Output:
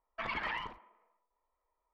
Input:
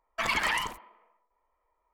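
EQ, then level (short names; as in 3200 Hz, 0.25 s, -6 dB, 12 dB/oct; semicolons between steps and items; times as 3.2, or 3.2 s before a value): air absorption 280 m; notch 6300 Hz, Q 19; -6.5 dB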